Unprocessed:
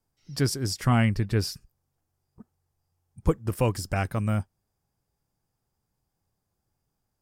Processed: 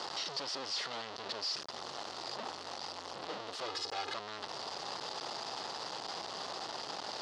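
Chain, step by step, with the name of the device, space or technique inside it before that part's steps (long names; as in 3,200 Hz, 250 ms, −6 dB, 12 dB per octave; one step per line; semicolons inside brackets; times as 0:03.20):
home computer beeper (sign of each sample alone; loudspeaker in its box 610–4,900 Hz, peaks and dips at 1,600 Hz −6 dB, 2,300 Hz −9 dB, 4,500 Hz +4 dB)
0:03.66–0:04.15: comb filter 2.4 ms, depth 74%
level −2.5 dB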